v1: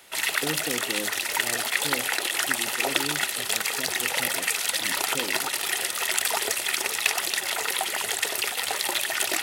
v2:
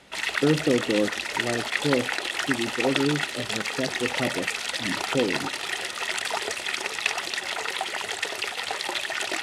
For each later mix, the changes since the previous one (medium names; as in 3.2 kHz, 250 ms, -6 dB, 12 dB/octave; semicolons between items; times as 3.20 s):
speech +11.5 dB; master: add distance through air 80 m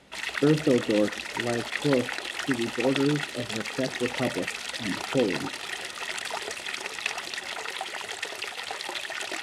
background -4.5 dB